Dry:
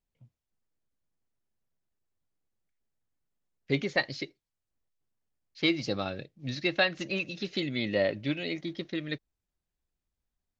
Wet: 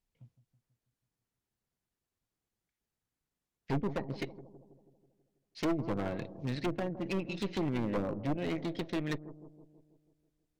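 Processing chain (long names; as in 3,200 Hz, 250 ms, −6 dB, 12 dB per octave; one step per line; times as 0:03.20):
treble cut that deepens with the level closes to 420 Hz, closed at −25 dBFS
notch filter 590 Hz, Q 12
harmonic generator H 5 −32 dB, 8 −14 dB, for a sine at −11.5 dBFS
gain into a clipping stage and back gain 27 dB
on a send: bucket-brigade delay 162 ms, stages 1,024, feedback 57%, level −13 dB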